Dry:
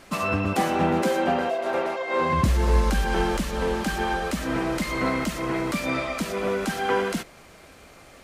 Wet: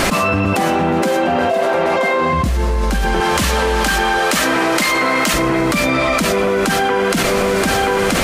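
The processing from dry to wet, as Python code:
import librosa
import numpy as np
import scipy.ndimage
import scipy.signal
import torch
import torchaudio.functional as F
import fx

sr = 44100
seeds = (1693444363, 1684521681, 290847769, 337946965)

y = fx.highpass(x, sr, hz=720.0, slope=6, at=(3.2, 5.34))
y = y + 10.0 ** (-16.5 / 20.0) * np.pad(y, (int(978 * sr / 1000.0), 0))[:len(y)]
y = fx.env_flatten(y, sr, amount_pct=100)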